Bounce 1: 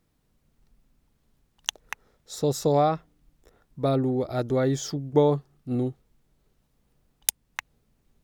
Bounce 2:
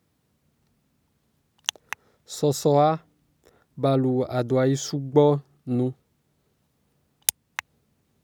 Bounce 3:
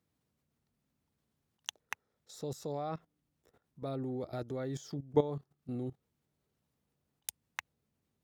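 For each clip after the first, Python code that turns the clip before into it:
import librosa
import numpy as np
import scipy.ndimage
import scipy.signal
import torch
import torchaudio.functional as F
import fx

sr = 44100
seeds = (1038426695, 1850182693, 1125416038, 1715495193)

y1 = scipy.signal.sosfilt(scipy.signal.butter(4, 70.0, 'highpass', fs=sr, output='sos'), x)
y1 = y1 * librosa.db_to_amplitude(2.5)
y2 = fx.level_steps(y1, sr, step_db=15)
y2 = y2 * librosa.db_to_amplitude(-7.0)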